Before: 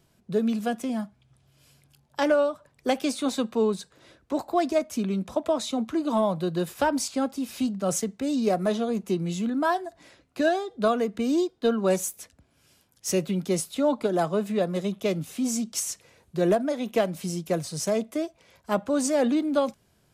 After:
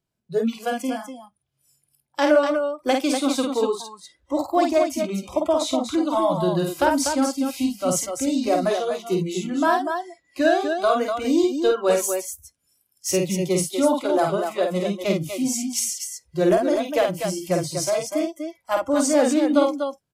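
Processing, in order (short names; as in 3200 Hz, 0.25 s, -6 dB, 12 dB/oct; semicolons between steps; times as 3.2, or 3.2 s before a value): loudspeakers at several distances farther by 17 m -4 dB, 84 m -6 dB; spectral noise reduction 22 dB; gain +3.5 dB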